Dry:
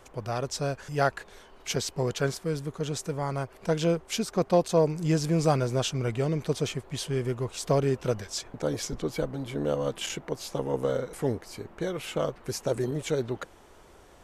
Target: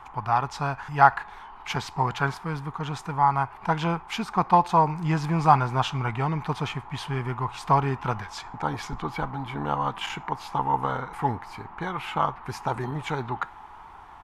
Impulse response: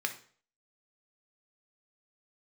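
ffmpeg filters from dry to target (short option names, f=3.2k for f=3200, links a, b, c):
-filter_complex "[0:a]firequalizer=gain_entry='entry(140,0);entry(550,-13);entry(840,15);entry(1600,2);entry(5700,-13)':delay=0.05:min_phase=1,asplit=2[a][b];[1:a]atrim=start_sample=2205,lowshelf=f=420:g=-11[c];[b][c]afir=irnorm=-1:irlink=0,volume=-11.5dB[d];[a][d]amix=inputs=2:normalize=0,volume=2dB"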